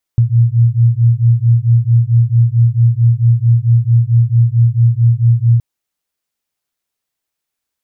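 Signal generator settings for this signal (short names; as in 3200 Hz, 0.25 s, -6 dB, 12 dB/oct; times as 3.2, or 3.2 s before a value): beating tones 115 Hz, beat 4.5 Hz, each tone -10.5 dBFS 5.42 s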